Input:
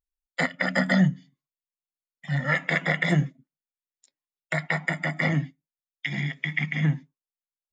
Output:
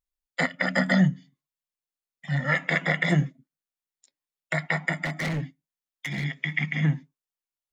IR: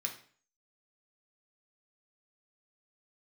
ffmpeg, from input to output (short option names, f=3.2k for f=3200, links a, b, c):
-filter_complex "[0:a]asplit=3[a][b][c];[a]afade=t=out:st=5.04:d=0.02[d];[b]volume=25.5dB,asoftclip=hard,volume=-25.5dB,afade=t=in:st=5.04:d=0.02,afade=t=out:st=6.23:d=0.02[e];[c]afade=t=in:st=6.23:d=0.02[f];[d][e][f]amix=inputs=3:normalize=0"